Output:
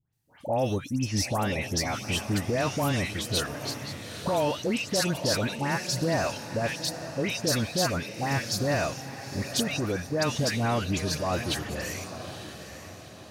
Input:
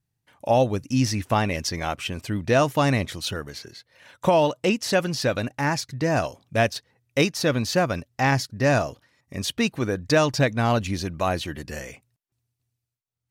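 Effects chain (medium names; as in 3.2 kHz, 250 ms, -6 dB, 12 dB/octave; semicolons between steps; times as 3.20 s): treble shelf 4.3 kHz +6.5 dB; peak limiter -18 dBFS, peak gain reduction 11.5 dB; phase dispersion highs, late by 133 ms, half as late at 1.8 kHz; on a send: echo that smears into a reverb 888 ms, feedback 44%, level -10.5 dB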